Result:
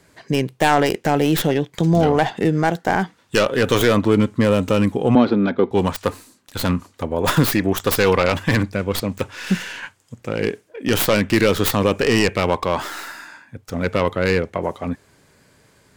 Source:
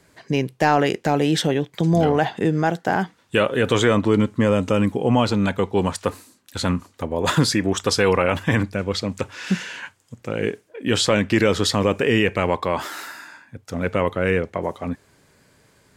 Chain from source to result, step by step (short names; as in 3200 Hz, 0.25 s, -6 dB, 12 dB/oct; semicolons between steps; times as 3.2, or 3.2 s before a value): tracing distortion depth 0.25 ms; 5.15–5.71 speaker cabinet 190–3500 Hz, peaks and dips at 250 Hz +8 dB, 370 Hz +7 dB, 950 Hz -5 dB, 1900 Hz -5 dB, 2800 Hz -10 dB; gain +2 dB